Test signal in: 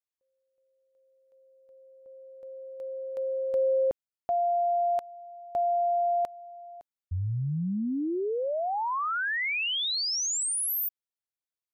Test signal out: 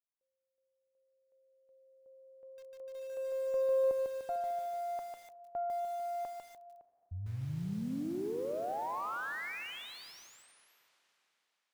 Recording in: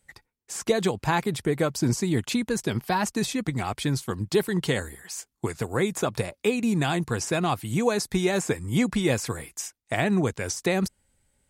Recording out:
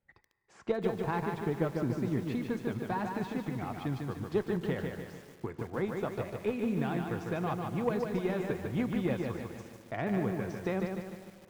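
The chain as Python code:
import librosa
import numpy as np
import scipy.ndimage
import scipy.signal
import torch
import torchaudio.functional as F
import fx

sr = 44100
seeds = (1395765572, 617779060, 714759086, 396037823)

y = scipy.signal.sosfilt(scipy.signal.bessel(2, 1600.0, 'lowpass', norm='mag', fs=sr, output='sos'), x)
y = fx.rev_schroeder(y, sr, rt60_s=3.8, comb_ms=31, drr_db=14.0)
y = fx.cheby_harmonics(y, sr, harmonics=(3, 4), levels_db=(-23, -25), full_scale_db=-10.5)
y = fx.low_shelf(y, sr, hz=81.0, db=-4.0)
y = fx.echo_crushed(y, sr, ms=149, feedback_pct=55, bits=8, wet_db=-4)
y = F.gain(torch.from_numpy(y), -6.5).numpy()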